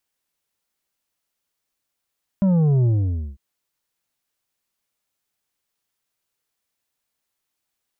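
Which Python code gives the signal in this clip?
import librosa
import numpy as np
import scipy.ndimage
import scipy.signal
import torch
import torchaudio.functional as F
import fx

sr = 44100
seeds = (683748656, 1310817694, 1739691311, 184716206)

y = fx.sub_drop(sr, level_db=-15, start_hz=200.0, length_s=0.95, drive_db=7.0, fade_s=0.52, end_hz=65.0)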